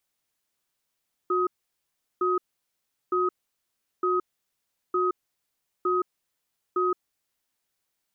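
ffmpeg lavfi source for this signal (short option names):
-f lavfi -i "aevalsrc='0.0631*(sin(2*PI*364*t)+sin(2*PI*1260*t))*clip(min(mod(t,0.91),0.17-mod(t,0.91))/0.005,0,1)':d=6.1:s=44100"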